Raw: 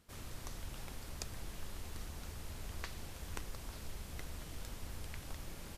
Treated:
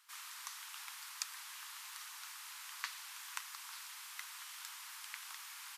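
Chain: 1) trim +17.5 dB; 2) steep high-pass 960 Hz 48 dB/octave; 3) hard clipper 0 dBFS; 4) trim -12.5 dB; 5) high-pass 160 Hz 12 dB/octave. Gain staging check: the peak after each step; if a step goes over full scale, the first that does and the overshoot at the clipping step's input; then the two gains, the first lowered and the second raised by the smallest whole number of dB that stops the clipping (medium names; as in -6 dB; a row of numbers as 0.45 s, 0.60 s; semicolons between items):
-3.0 dBFS, -4.5 dBFS, -4.5 dBFS, -17.0 dBFS, -17.0 dBFS; nothing clips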